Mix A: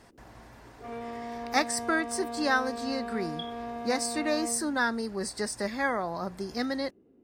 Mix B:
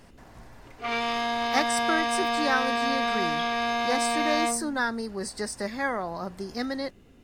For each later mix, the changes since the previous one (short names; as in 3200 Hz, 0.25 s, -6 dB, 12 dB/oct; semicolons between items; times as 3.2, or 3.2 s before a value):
background: remove band-pass 350 Hz, Q 2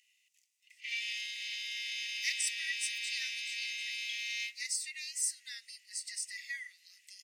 speech: entry +0.70 s; master: add rippled Chebyshev high-pass 1900 Hz, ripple 6 dB